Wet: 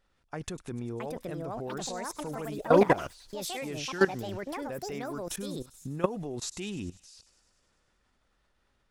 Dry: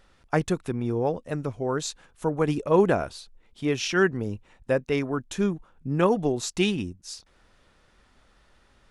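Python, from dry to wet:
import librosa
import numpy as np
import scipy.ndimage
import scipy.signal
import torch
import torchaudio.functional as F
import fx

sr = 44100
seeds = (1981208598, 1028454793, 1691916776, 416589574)

y = fx.echo_pitch(x, sr, ms=766, semitones=6, count=2, db_per_echo=-3.0)
y = fx.level_steps(y, sr, step_db=18)
y = fx.echo_wet_highpass(y, sr, ms=100, feedback_pct=71, hz=5200.0, wet_db=-12.5)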